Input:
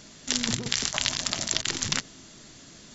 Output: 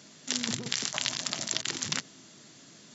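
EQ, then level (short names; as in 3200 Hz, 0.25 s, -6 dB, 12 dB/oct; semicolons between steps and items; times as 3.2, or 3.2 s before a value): HPF 120 Hz 24 dB/oct; -4.0 dB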